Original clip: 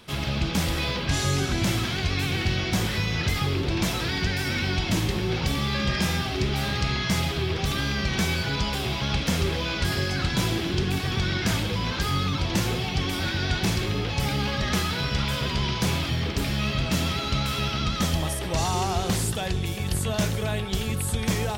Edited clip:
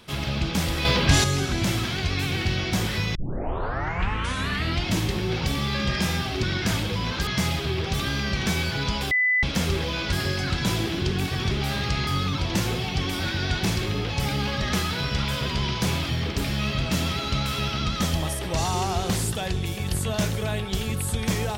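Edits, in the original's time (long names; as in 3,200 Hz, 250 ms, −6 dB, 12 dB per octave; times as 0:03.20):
0:00.85–0:01.24: clip gain +7 dB
0:03.15: tape start 1.75 s
0:06.43–0:06.99: swap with 0:11.23–0:12.07
0:08.83–0:09.15: beep over 2,000 Hz −18 dBFS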